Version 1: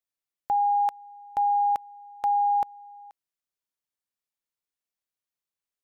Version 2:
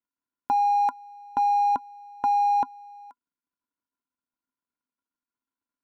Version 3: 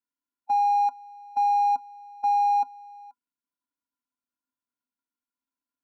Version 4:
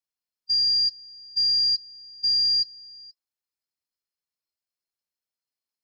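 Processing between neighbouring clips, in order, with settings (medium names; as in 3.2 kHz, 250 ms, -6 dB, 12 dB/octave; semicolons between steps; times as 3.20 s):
median filter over 15 samples; small resonant body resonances 260/1000/1400 Hz, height 18 dB, ringing for 55 ms
harmonic-percussive split percussive -16 dB
split-band scrambler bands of 4 kHz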